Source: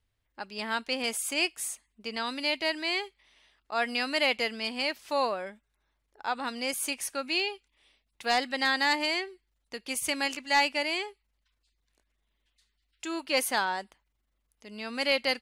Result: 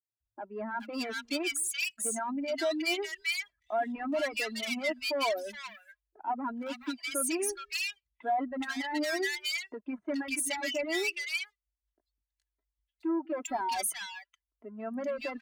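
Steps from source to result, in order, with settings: spectral contrast raised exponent 2; soft clip -23 dBFS, distortion -15 dB; sample leveller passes 2; reverb removal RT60 0.78 s; HPF 63 Hz 12 dB/oct; comb 3 ms, depth 66%; three bands offset in time mids, lows, highs 0.2/0.42 s, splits 160/1500 Hz; gain -3.5 dB

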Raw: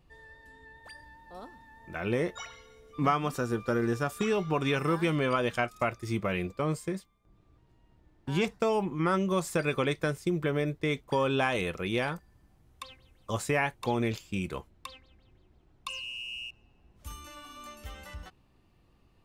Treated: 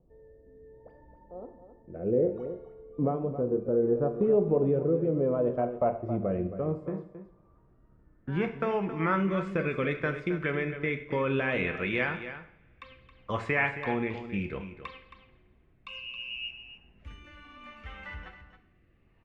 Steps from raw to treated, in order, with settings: low-pass sweep 520 Hz -> 2100 Hz, 5.29–9.15; in parallel at +3 dB: limiter -18.5 dBFS, peak gain reduction 7 dB; on the sum: rotary speaker horn 0.65 Hz; on a send: echo 0.27 s -11.5 dB; on the sum: two-slope reverb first 0.57 s, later 2.7 s, from -26 dB, DRR 7 dB; gain -7 dB

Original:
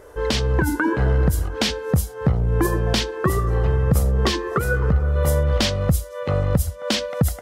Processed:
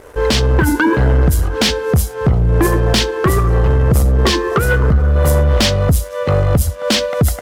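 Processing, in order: sample leveller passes 2; gain +1.5 dB

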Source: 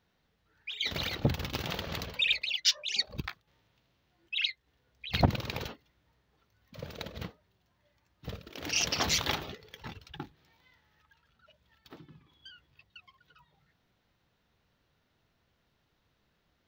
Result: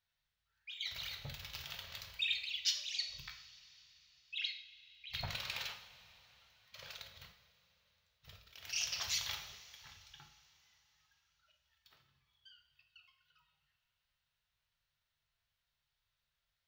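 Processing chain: passive tone stack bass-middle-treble 10-0-10; 5.25–6.97 overdrive pedal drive 17 dB, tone 5800 Hz, clips at -19 dBFS; 11.98–12.51 notch comb 160 Hz; two-slope reverb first 0.55 s, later 4.1 s, from -18 dB, DRR 3.5 dB; gain -7.5 dB

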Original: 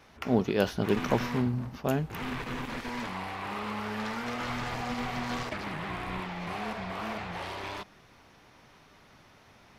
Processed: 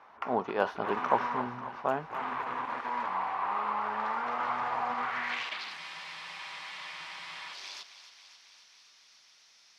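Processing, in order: band-pass sweep 1000 Hz -> 5300 Hz, 4.94–5.77; thinning echo 0.271 s, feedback 73%, high-pass 550 Hz, level -12 dB; spectral freeze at 5.8, 1.73 s; gain +8.5 dB

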